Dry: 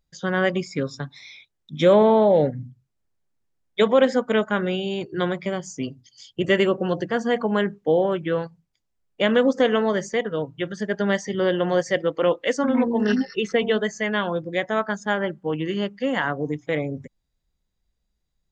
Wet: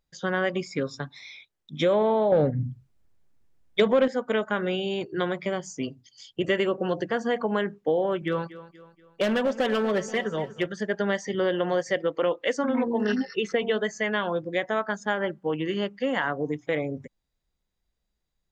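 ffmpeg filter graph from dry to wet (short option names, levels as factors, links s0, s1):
-filter_complex "[0:a]asettb=1/sr,asplit=3[s0][s1][s2];[s0]atrim=end=2.324[s3];[s1]atrim=start=2.32:end=4.08,asetpts=PTS-STARTPTS,afade=t=in:d=0.004:c=qsin,afade=t=out:st=1.756:d=0.004:c=qsin,lowshelf=f=200:g=12,acontrast=47[s4];[s2]atrim=start=4.076[s5];[s3][s4]acrossfade=d=0.004:c1=hsin:c2=qsin[s6];[s6][s5]acrossfade=d=0.004:c1=qsin:c2=hsin,asettb=1/sr,asplit=3[s7][s8][s9];[s7]atrim=end=8.214[s10];[s8]atrim=start=8.21:end=10.66,asetpts=PTS-STARTPTS,afade=t=in:d=0.004:c=qsin,afade=t=out:st=2.446:d=0.004:c=qsin,aecho=1:1:5.2:0.53,atrim=end_sample=108045,asoftclip=type=hard:threshold=0.168,aecho=1:1:239|478|717|956:0.141|0.0636|0.0286|0.0129,atrim=end_sample=108045[s11];[s9]atrim=start=10.656[s12];[s10][s11]acrossfade=d=0.004:c1=hsin:c2=qsin[s13];[s13][s12]acrossfade=d=0.004:c1=qsin:c2=hsin,bass=f=250:g=-5,treble=f=4000:g=-3,acompressor=threshold=0.0794:ratio=2.5"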